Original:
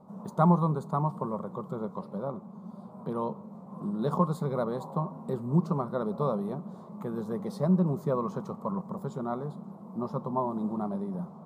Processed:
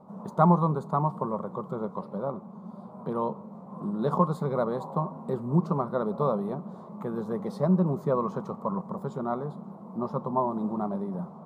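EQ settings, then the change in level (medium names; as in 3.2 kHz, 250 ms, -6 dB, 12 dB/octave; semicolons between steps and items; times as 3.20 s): bass shelf 370 Hz -5 dB; treble shelf 3.3 kHz -9.5 dB; +5.0 dB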